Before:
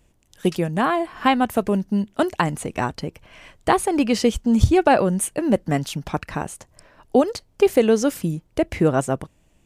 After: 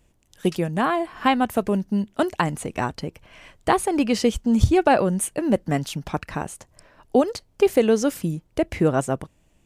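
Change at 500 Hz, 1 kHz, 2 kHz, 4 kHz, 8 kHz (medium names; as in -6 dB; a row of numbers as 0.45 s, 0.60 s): -1.5 dB, -1.5 dB, -1.5 dB, -1.5 dB, -1.5 dB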